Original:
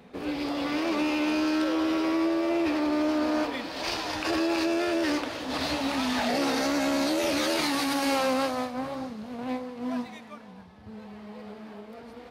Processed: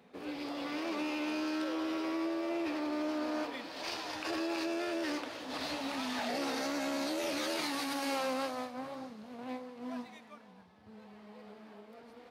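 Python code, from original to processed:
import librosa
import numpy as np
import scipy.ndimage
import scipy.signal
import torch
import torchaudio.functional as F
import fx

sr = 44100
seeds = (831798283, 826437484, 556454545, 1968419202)

y = fx.highpass(x, sr, hz=200.0, slope=6)
y = F.gain(torch.from_numpy(y), -8.0).numpy()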